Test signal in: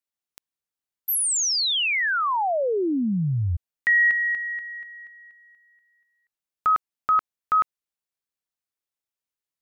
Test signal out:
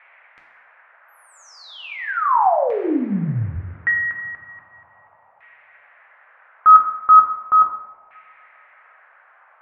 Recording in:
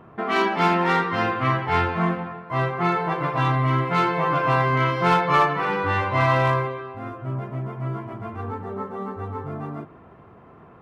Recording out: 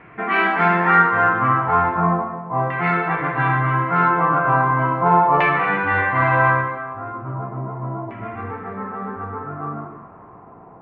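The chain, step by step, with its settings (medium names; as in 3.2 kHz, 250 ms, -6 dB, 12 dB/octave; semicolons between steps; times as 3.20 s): two-slope reverb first 0.83 s, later 2.7 s, from -19 dB, DRR 0 dB; band noise 580–2400 Hz -55 dBFS; LFO low-pass saw down 0.37 Hz 850–2300 Hz; trim -1.5 dB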